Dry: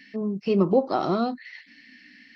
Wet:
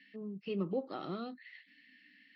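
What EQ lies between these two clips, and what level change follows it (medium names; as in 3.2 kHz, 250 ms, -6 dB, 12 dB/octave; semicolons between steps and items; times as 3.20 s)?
cabinet simulation 220–3300 Hz, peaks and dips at 230 Hz -7 dB, 360 Hz -5 dB, 690 Hz -6 dB, 990 Hz -9 dB, 1.5 kHz -5 dB, 2.3 kHz -6 dB; peaking EQ 650 Hz -10 dB 2.2 oct; -4.0 dB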